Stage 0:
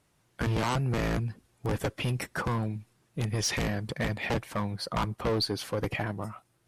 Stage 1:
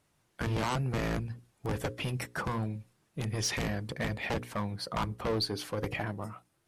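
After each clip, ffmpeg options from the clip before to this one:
ffmpeg -i in.wav -af "bandreject=frequency=60:width_type=h:width=6,bandreject=frequency=120:width_type=h:width=6,bandreject=frequency=180:width_type=h:width=6,bandreject=frequency=240:width_type=h:width=6,bandreject=frequency=300:width_type=h:width=6,bandreject=frequency=360:width_type=h:width=6,bandreject=frequency=420:width_type=h:width=6,bandreject=frequency=480:width_type=h:width=6,bandreject=frequency=540:width_type=h:width=6,volume=-2.5dB" out.wav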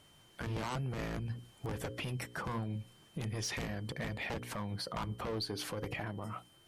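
ffmpeg -i in.wav -af "acompressor=threshold=-42dB:ratio=4,alimiter=level_in=14.5dB:limit=-24dB:level=0:latency=1:release=109,volume=-14.5dB,aeval=exprs='val(0)+0.000224*sin(2*PI*3100*n/s)':channel_layout=same,volume=8.5dB" out.wav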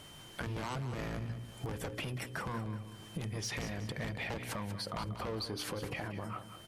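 ffmpeg -i in.wav -filter_complex "[0:a]acompressor=threshold=-50dB:ratio=3,asplit=2[link_01][link_02];[link_02]aecho=0:1:188|376|564|752:0.282|0.116|0.0474|0.0194[link_03];[link_01][link_03]amix=inputs=2:normalize=0,volume=10dB" out.wav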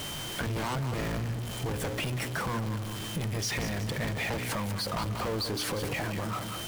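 ffmpeg -i in.wav -af "aeval=exprs='val(0)+0.5*0.0158*sgn(val(0))':channel_layout=same,volume=3dB" out.wav

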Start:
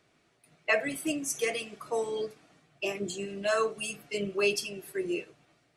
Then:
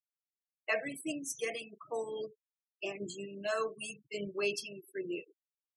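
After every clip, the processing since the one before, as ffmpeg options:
ffmpeg -i in.wav -af "afftfilt=real='re*gte(hypot(re,im),0.0126)':imag='im*gte(hypot(re,im),0.0126)':win_size=1024:overlap=0.75,volume=-6.5dB" out.wav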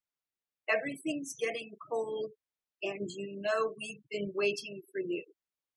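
ffmpeg -i in.wav -af "highshelf=frequency=6000:gain=-11,volume=3.5dB" out.wav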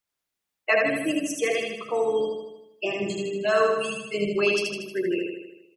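ffmpeg -i in.wav -af "aecho=1:1:78|156|234|312|390|468|546|624:0.708|0.404|0.23|0.131|0.0747|0.0426|0.0243|0.0138,volume=7.5dB" out.wav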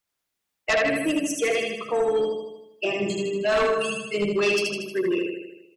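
ffmpeg -i in.wav -af "aeval=exprs='0.355*sin(PI/2*2.24*val(0)/0.355)':channel_layout=same,volume=-8dB" out.wav

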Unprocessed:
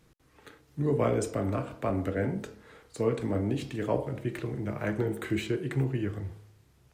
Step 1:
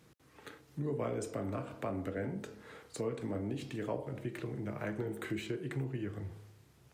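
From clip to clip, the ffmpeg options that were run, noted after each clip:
ffmpeg -i in.wav -af "highpass=89,acompressor=threshold=-42dB:ratio=2,volume=1dB" out.wav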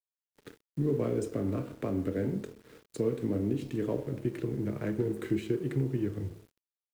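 ffmpeg -i in.wav -af "acrusher=bits=9:mix=0:aa=0.000001,aeval=exprs='sgn(val(0))*max(abs(val(0))-0.00224,0)':channel_layout=same,lowshelf=frequency=540:width_type=q:width=1.5:gain=7.5" out.wav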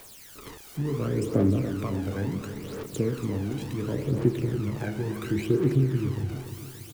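ffmpeg -i in.wav -af "aeval=exprs='val(0)+0.5*0.0119*sgn(val(0))':channel_layout=same,aphaser=in_gain=1:out_gain=1:delay=1.4:decay=0.65:speed=0.71:type=triangular,aecho=1:1:286|572|858|1144|1430|1716:0.282|0.149|0.0792|0.042|0.0222|0.0118" out.wav

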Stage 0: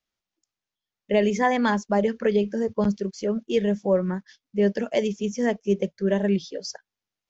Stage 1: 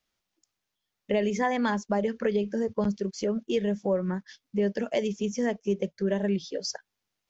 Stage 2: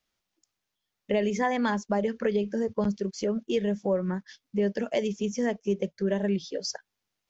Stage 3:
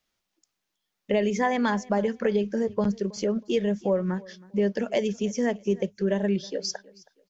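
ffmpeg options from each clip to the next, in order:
ffmpeg -i in.wav -af "acompressor=threshold=-36dB:ratio=2,volume=5dB" out.wav
ffmpeg -i in.wav -af anull out.wav
ffmpeg -i in.wav -af "bandreject=frequency=50:width_type=h:width=6,bandreject=frequency=100:width_type=h:width=6,aecho=1:1:320|640:0.075|0.0225,volume=2dB" out.wav

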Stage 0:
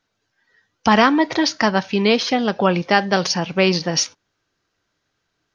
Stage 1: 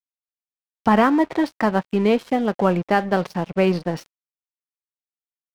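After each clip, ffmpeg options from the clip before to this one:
ffmpeg -i in.wav -af "lowpass=frequency=1200:poles=1,aemphasis=mode=reproduction:type=cd,aeval=exprs='sgn(val(0))*max(abs(val(0))-0.0168,0)':channel_layout=same" out.wav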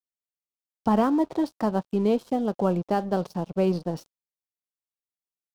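ffmpeg -i in.wav -af "equalizer=frequency=2000:width=1.2:gain=-14.5,volume=-4dB" out.wav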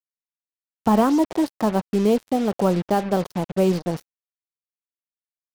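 ffmpeg -i in.wav -af "acrusher=bits=5:mix=0:aa=0.5,volume=4dB" out.wav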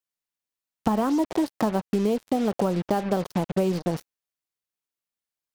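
ffmpeg -i in.wav -af "acompressor=threshold=-25dB:ratio=6,volume=4.5dB" out.wav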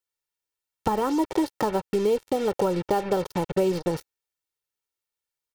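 ffmpeg -i in.wav -af "aecho=1:1:2.2:0.6" out.wav

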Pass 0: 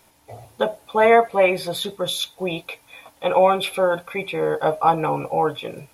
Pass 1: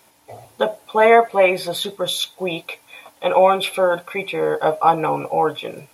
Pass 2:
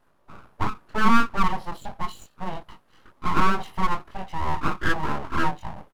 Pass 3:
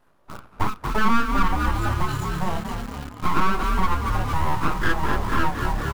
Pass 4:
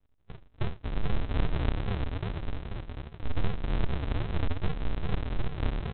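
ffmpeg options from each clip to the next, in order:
ffmpeg -i in.wav -af "highpass=frequency=190:poles=1,volume=2.5dB" out.wav
ffmpeg -i in.wav -af "firequalizer=gain_entry='entry(160,0);entry(290,8);entry(830,2);entry(1600,-21);entry(2700,-12);entry(5700,-18)':delay=0.05:min_phase=1,flanger=delay=20:depth=4.5:speed=0.43,aeval=exprs='abs(val(0))':channel_layout=same,volume=-4dB" out.wav
ffmpeg -i in.wav -filter_complex "[0:a]asplit=9[link_01][link_02][link_03][link_04][link_05][link_06][link_07][link_08][link_09];[link_02]adelay=230,afreqshift=35,volume=-9dB[link_10];[link_03]adelay=460,afreqshift=70,volume=-13dB[link_11];[link_04]adelay=690,afreqshift=105,volume=-17dB[link_12];[link_05]adelay=920,afreqshift=140,volume=-21dB[link_13];[link_06]adelay=1150,afreqshift=175,volume=-25.1dB[link_14];[link_07]adelay=1380,afreqshift=210,volume=-29.1dB[link_15];[link_08]adelay=1610,afreqshift=245,volume=-33.1dB[link_16];[link_09]adelay=1840,afreqshift=280,volume=-37.1dB[link_17];[link_01][link_10][link_11][link_12][link_13][link_14][link_15][link_16][link_17]amix=inputs=9:normalize=0,asplit=2[link_18][link_19];[link_19]acrusher=bits=5:mix=0:aa=0.000001,volume=-5.5dB[link_20];[link_18][link_20]amix=inputs=2:normalize=0,acompressor=threshold=-22dB:ratio=2,volume=2.5dB" out.wav
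ffmpeg -i in.wav -af "flanger=delay=1.3:depth=1:regen=-70:speed=0.39:shape=sinusoidal,aresample=8000,acrusher=samples=37:mix=1:aa=0.000001:lfo=1:lforange=22.2:lforate=2.5,aresample=44100,volume=-3dB" out.wav

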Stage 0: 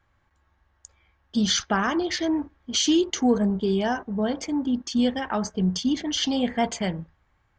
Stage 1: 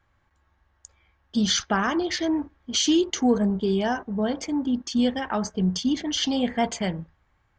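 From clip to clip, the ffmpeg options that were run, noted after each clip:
ffmpeg -i in.wav -af anull out.wav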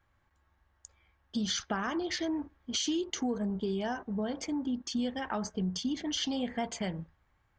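ffmpeg -i in.wav -af "acompressor=threshold=-26dB:ratio=3,volume=-4.5dB" out.wav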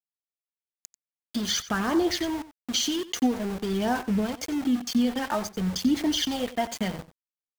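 ffmpeg -i in.wav -af "aphaser=in_gain=1:out_gain=1:delay=4.5:decay=0.48:speed=0.5:type=sinusoidal,aeval=exprs='val(0)*gte(abs(val(0)),0.0126)':channel_layout=same,aecho=1:1:91:0.158,volume=5dB" out.wav

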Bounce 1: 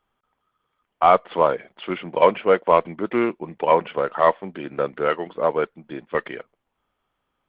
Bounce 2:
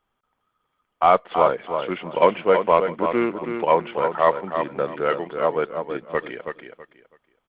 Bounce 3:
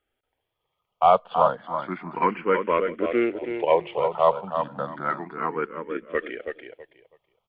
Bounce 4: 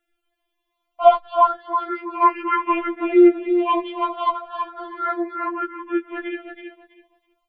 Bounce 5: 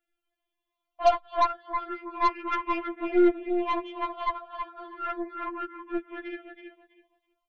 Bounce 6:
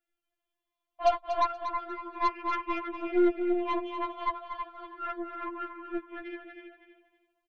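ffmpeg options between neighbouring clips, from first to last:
ffmpeg -i in.wav -af "aecho=1:1:326|652|978:0.447|0.103|0.0236,volume=-1dB" out.wav
ffmpeg -i in.wav -filter_complex "[0:a]asplit=2[link_01][link_02];[link_02]afreqshift=0.31[link_03];[link_01][link_03]amix=inputs=2:normalize=1" out.wav
ffmpeg -i in.wav -af "afftfilt=real='re*4*eq(mod(b,16),0)':imag='im*4*eq(mod(b,16),0)':win_size=2048:overlap=0.75,volume=6dB" out.wav
ffmpeg -i in.wav -af "aeval=exprs='0.891*(cos(1*acos(clip(val(0)/0.891,-1,1)))-cos(1*PI/2))+0.0631*(cos(8*acos(clip(val(0)/0.891,-1,1)))-cos(8*PI/2))':channel_layout=same,volume=-8.5dB" out.wav
ffmpeg -i in.wav -af "aecho=1:1:238|476|714:0.355|0.0745|0.0156,volume=-3.5dB" out.wav

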